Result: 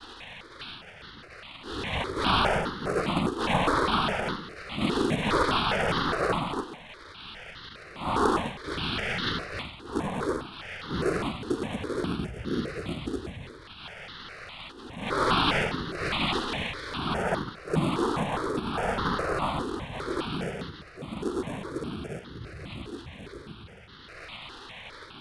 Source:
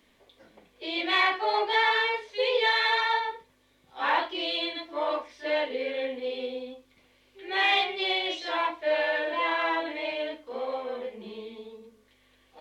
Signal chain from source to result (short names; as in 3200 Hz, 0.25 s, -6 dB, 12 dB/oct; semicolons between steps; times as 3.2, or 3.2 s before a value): switching spikes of -26.5 dBFS; noise vocoder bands 4; in parallel at -8 dB: sample-and-hold 22×; on the sum: speed mistake 15 ips tape played at 7.5 ips; step phaser 4.9 Hz 610–2400 Hz; gain +1.5 dB